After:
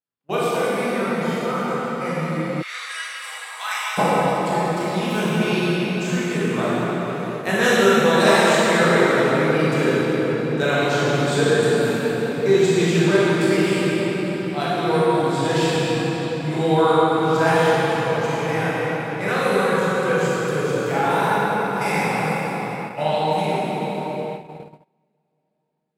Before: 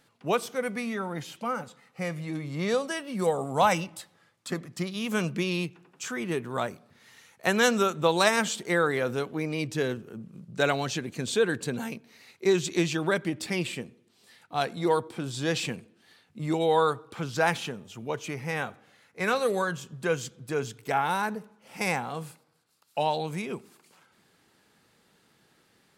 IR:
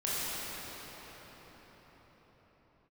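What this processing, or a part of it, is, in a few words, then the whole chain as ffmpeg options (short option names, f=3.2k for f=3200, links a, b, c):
cathedral: -filter_complex "[1:a]atrim=start_sample=2205[a];[0:a][a]afir=irnorm=-1:irlink=0,agate=range=-34dB:threshold=-28dB:ratio=16:detection=peak,asplit=3[b][c][d];[b]afade=t=out:st=2.61:d=0.02[e];[c]highpass=f=1.3k:w=0.5412,highpass=f=1.3k:w=1.3066,afade=t=in:st=2.61:d=0.02,afade=t=out:st=3.97:d=0.02[f];[d]afade=t=in:st=3.97:d=0.02[g];[e][f][g]amix=inputs=3:normalize=0,equalizer=f=5.9k:w=4.2:g=-4.5"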